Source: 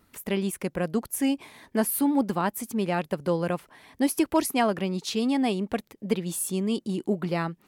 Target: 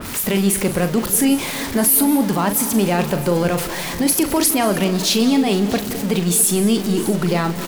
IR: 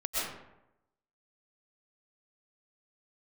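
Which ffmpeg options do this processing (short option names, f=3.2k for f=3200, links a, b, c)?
-filter_complex "[0:a]aeval=exprs='val(0)+0.5*0.0224*sgn(val(0))':c=same,alimiter=limit=-19dB:level=0:latency=1:release=19,aecho=1:1:40|654:0.335|0.141,asplit=2[a][b];[1:a]atrim=start_sample=2205,asetrate=30429,aresample=44100[c];[b][c]afir=irnorm=-1:irlink=0,volume=-20.5dB[d];[a][d]amix=inputs=2:normalize=0,adynamicequalizer=threshold=0.00631:dfrequency=3200:dqfactor=0.7:tfrequency=3200:tqfactor=0.7:attack=5:release=100:ratio=0.375:range=2:mode=boostabove:tftype=highshelf,volume=8dB"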